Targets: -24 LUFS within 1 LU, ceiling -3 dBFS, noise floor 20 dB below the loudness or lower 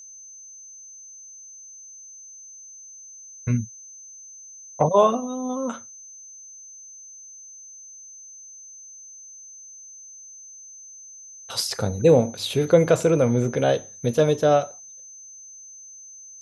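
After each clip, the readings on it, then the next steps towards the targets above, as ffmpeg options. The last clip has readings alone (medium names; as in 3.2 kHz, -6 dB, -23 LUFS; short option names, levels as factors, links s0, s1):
steady tone 6.2 kHz; tone level -41 dBFS; loudness -21.5 LUFS; peak level -5.0 dBFS; loudness target -24.0 LUFS
-> -af "bandreject=f=6200:w=30"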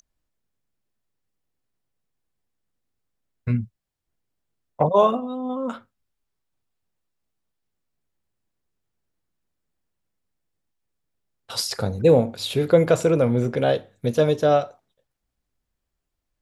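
steady tone not found; loudness -21.5 LUFS; peak level -5.0 dBFS; loudness target -24.0 LUFS
-> -af "volume=0.75"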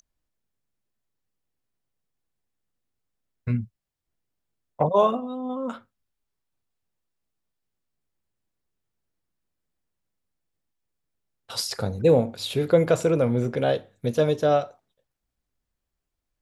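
loudness -24.0 LUFS; peak level -7.5 dBFS; noise floor -83 dBFS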